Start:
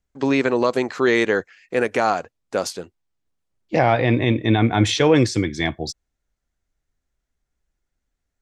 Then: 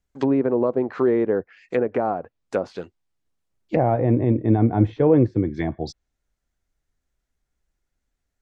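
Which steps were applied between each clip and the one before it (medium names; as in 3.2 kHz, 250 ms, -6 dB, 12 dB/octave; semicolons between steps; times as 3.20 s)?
low-pass that closes with the level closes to 670 Hz, closed at -17.5 dBFS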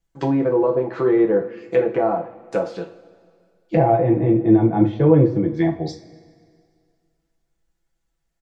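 comb 6 ms, depth 51%; two-slope reverb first 0.33 s, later 2.1 s, from -20 dB, DRR 1 dB; trim -1 dB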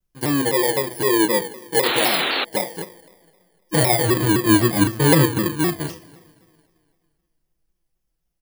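bit-reversed sample order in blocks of 32 samples; painted sound noise, 1.83–2.45 s, 230–4300 Hz -21 dBFS; vibrato with a chosen wave saw down 3.9 Hz, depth 160 cents; trim -1 dB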